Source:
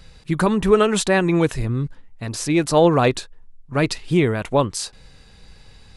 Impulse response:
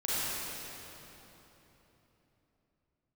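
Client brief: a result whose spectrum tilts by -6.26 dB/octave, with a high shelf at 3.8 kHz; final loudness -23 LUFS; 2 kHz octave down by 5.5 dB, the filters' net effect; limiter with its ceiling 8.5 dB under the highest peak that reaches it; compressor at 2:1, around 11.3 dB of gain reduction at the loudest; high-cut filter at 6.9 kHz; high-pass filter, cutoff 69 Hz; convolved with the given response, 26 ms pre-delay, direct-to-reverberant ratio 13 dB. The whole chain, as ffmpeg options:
-filter_complex "[0:a]highpass=69,lowpass=6900,equalizer=f=2000:t=o:g=-5.5,highshelf=f=3800:g=-6.5,acompressor=threshold=0.0282:ratio=2,alimiter=limit=0.0668:level=0:latency=1,asplit=2[s0][s1];[1:a]atrim=start_sample=2205,adelay=26[s2];[s1][s2]afir=irnorm=-1:irlink=0,volume=0.0794[s3];[s0][s3]amix=inputs=2:normalize=0,volume=3.16"

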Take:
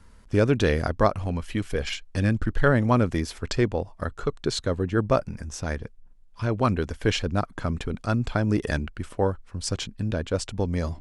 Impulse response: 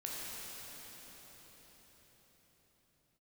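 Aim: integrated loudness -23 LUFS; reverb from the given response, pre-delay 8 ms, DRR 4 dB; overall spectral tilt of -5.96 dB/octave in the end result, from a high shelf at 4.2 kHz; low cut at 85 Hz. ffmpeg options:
-filter_complex "[0:a]highpass=85,highshelf=f=4200:g=-3.5,asplit=2[s0][s1];[1:a]atrim=start_sample=2205,adelay=8[s2];[s1][s2]afir=irnorm=-1:irlink=0,volume=0.501[s3];[s0][s3]amix=inputs=2:normalize=0,volume=1.26"

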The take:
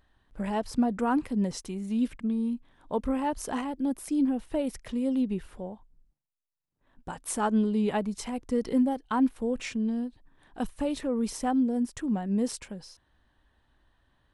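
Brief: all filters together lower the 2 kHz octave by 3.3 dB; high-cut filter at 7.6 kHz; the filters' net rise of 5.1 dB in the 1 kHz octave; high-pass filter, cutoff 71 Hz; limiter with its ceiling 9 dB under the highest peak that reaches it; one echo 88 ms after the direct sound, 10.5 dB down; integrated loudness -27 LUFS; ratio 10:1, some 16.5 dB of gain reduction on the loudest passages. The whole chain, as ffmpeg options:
-af "highpass=71,lowpass=7600,equalizer=f=1000:t=o:g=8,equalizer=f=2000:t=o:g=-8.5,acompressor=threshold=0.0141:ratio=10,alimiter=level_in=3.16:limit=0.0631:level=0:latency=1,volume=0.316,aecho=1:1:88:0.299,volume=5.96"

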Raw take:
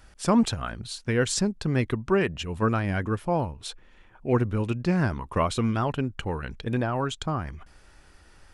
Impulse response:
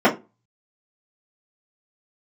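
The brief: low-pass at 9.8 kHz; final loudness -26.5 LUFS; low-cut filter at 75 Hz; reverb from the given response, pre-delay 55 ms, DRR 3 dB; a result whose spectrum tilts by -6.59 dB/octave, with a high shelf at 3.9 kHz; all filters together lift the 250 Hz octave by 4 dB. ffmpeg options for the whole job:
-filter_complex "[0:a]highpass=75,lowpass=9800,equalizer=f=250:t=o:g=5,highshelf=f=3900:g=3,asplit=2[s0][s1];[1:a]atrim=start_sample=2205,adelay=55[s2];[s1][s2]afir=irnorm=-1:irlink=0,volume=0.0531[s3];[s0][s3]amix=inputs=2:normalize=0,volume=0.447"

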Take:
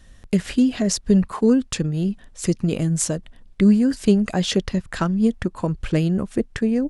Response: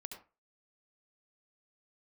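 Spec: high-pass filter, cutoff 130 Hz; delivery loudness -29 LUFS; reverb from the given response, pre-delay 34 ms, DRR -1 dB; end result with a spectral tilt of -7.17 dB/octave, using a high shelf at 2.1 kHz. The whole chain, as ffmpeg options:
-filter_complex "[0:a]highpass=130,highshelf=f=2100:g=-4.5,asplit=2[s0][s1];[1:a]atrim=start_sample=2205,adelay=34[s2];[s1][s2]afir=irnorm=-1:irlink=0,volume=1.78[s3];[s0][s3]amix=inputs=2:normalize=0,volume=0.299"

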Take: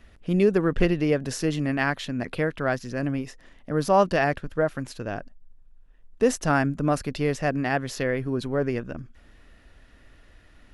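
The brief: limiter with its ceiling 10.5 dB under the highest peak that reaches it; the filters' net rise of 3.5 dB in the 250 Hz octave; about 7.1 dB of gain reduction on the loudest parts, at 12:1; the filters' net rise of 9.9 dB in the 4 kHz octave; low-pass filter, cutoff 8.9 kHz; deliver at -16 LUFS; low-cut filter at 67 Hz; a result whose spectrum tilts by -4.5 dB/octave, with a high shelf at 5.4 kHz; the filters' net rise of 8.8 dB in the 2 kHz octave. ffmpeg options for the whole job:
-af "highpass=67,lowpass=8900,equalizer=f=250:t=o:g=4.5,equalizer=f=2000:t=o:g=8.5,equalizer=f=4000:t=o:g=6.5,highshelf=f=5400:g=9,acompressor=threshold=0.112:ratio=12,volume=5.01,alimiter=limit=0.501:level=0:latency=1"

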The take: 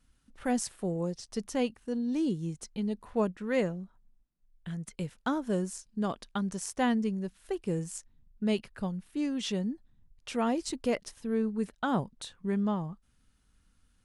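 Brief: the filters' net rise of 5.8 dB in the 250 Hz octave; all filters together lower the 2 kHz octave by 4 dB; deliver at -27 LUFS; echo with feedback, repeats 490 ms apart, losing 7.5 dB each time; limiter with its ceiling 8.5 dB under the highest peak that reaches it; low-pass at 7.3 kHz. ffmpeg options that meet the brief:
-af "lowpass=7300,equalizer=f=250:t=o:g=7,equalizer=f=2000:t=o:g=-5.5,alimiter=limit=0.0841:level=0:latency=1,aecho=1:1:490|980|1470|1960|2450:0.422|0.177|0.0744|0.0312|0.0131,volume=1.58"

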